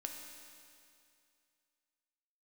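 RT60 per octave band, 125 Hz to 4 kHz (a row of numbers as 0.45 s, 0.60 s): 2.4 s, 2.4 s, 2.4 s, 2.4 s, 2.4 s, 2.4 s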